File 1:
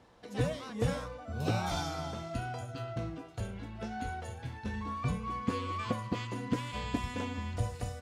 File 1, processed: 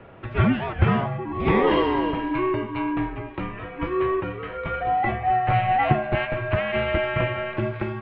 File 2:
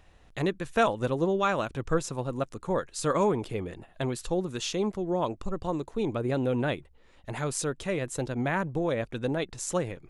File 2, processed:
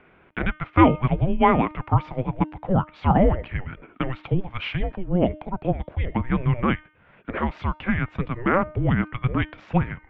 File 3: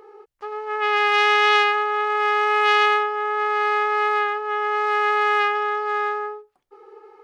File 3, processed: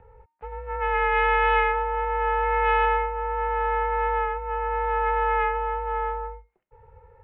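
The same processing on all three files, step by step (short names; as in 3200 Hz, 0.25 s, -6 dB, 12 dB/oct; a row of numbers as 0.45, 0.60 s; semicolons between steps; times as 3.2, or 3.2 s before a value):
mistuned SSB -370 Hz 430–3000 Hz; de-hum 306.1 Hz, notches 32; match loudness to -24 LUFS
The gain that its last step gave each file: +18.0, +10.0, -3.0 dB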